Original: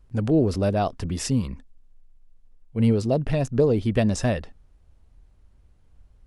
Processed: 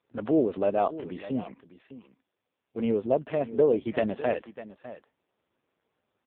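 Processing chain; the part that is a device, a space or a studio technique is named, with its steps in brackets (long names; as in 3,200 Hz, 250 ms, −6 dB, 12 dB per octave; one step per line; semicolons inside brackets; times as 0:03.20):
satellite phone (band-pass filter 350–3,100 Hz; single-tap delay 602 ms −15 dB; level +1 dB; AMR narrowband 5.15 kbit/s 8,000 Hz)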